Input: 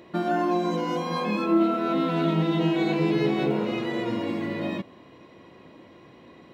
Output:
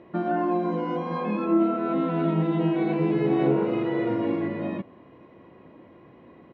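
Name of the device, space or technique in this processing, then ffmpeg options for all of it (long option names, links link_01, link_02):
phone in a pocket: -filter_complex "[0:a]lowpass=3200,highshelf=frequency=2500:gain=-10.5,equalizer=frequency=4000:width=3.5:gain=-3,asplit=3[link_01][link_02][link_03];[link_01]afade=type=out:start_time=3.3:duration=0.02[link_04];[link_02]asplit=2[link_05][link_06];[link_06]adelay=36,volume=-2dB[link_07];[link_05][link_07]amix=inputs=2:normalize=0,afade=type=in:start_time=3.3:duration=0.02,afade=type=out:start_time=4.47:duration=0.02[link_08];[link_03]afade=type=in:start_time=4.47:duration=0.02[link_09];[link_04][link_08][link_09]amix=inputs=3:normalize=0"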